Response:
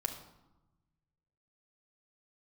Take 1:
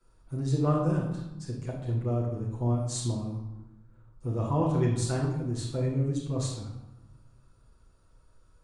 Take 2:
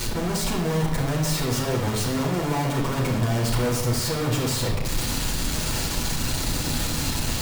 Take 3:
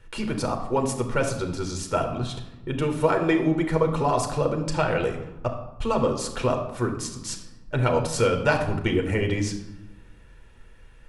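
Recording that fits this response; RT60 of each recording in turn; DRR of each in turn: 3; 1.0, 1.0, 1.0 seconds; −8.5, −3.0, 3.0 decibels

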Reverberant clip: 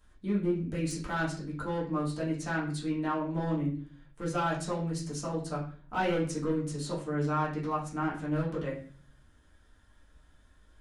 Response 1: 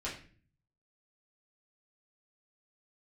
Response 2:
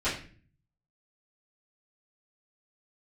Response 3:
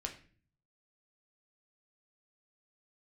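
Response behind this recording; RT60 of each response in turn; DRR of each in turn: 1; 0.45, 0.45, 0.45 seconds; −8.0, −15.0, 2.0 decibels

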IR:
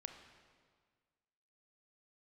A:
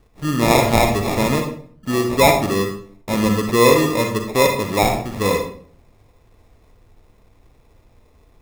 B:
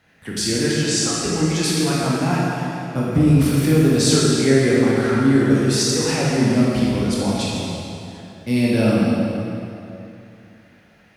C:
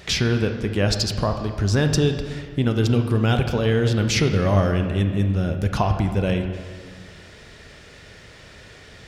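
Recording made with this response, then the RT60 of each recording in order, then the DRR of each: C; 0.50, 2.8, 1.7 seconds; 3.0, −6.0, 5.5 decibels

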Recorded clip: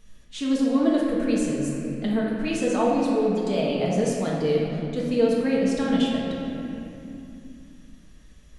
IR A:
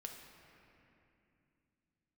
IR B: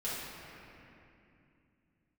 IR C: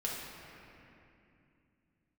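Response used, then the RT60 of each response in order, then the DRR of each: C; 2.7, 2.7, 2.7 seconds; 1.5, −10.0, −4.5 decibels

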